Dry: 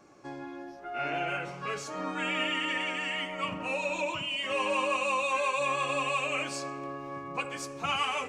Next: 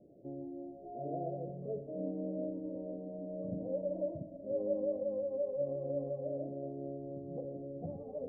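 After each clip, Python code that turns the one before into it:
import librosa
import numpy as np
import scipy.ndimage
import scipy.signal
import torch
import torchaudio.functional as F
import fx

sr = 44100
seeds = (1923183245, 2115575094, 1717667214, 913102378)

y = scipy.signal.sosfilt(scipy.signal.cheby1(6, 3, 680.0, 'lowpass', fs=sr, output='sos'), x)
y = F.gain(torch.from_numpy(y), 1.0).numpy()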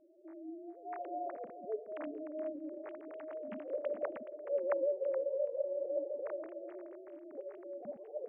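y = fx.sine_speech(x, sr)
y = y + 10.0 ** (-12.0 / 20.0) * np.pad(y, (int(423 * sr / 1000.0), 0))[:len(y)]
y = F.gain(torch.from_numpy(y), -1.0).numpy()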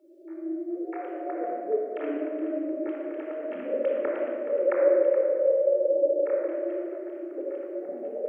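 y = scipy.signal.sosfilt(scipy.signal.butter(4, 290.0, 'highpass', fs=sr, output='sos'), x)
y = fx.peak_eq(y, sr, hz=920.0, db=-8.5, octaves=0.74)
y = fx.room_shoebox(y, sr, seeds[0], volume_m3=2700.0, walls='mixed', distance_m=4.3)
y = F.gain(torch.from_numpy(y), 7.0).numpy()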